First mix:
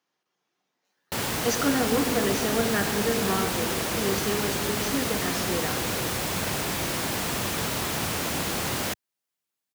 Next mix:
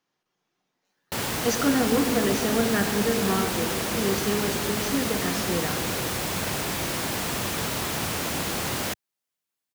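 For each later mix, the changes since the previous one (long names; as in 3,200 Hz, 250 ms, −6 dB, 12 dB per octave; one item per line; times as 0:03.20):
speech: remove high-pass filter 250 Hz 6 dB per octave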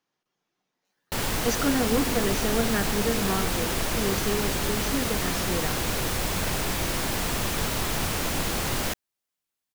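speech: send −6.5 dB
background: remove high-pass filter 92 Hz 12 dB per octave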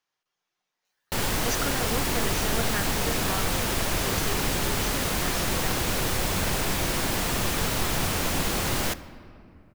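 speech: add parametric band 230 Hz −13 dB 2.4 octaves
background: send on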